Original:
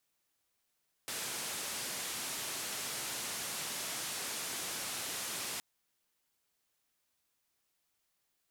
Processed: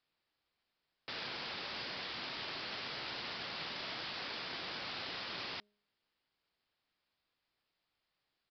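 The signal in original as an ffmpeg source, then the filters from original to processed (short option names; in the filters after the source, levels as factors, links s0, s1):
-f lavfi -i "anoisesrc=c=white:d=4.52:r=44100:seed=1,highpass=f=110,lowpass=f=11000,volume=-31.7dB"
-af "bandreject=f=207.3:t=h:w=4,bandreject=f=414.6:t=h:w=4,bandreject=f=621.9:t=h:w=4,aresample=11025,acrusher=bits=3:mode=log:mix=0:aa=0.000001,aresample=44100"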